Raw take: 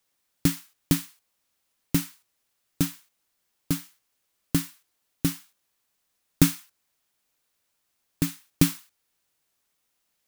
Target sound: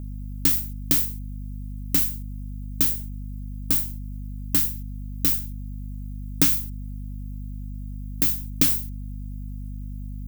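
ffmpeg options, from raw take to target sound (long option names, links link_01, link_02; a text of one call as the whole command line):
ffmpeg -i in.wav -filter_complex "[0:a]aemphasis=mode=production:type=bsi,aeval=exprs='val(0)+0.0282*(sin(2*PI*50*n/s)+sin(2*PI*2*50*n/s)/2+sin(2*PI*3*50*n/s)/3+sin(2*PI*4*50*n/s)/4+sin(2*PI*5*50*n/s)/5)':channel_layout=same,acrossover=split=6800[link_01][link_02];[link_02]acompressor=threshold=-13dB:ratio=4:attack=1:release=60[link_03];[link_01][link_03]amix=inputs=2:normalize=0,volume=-1dB" out.wav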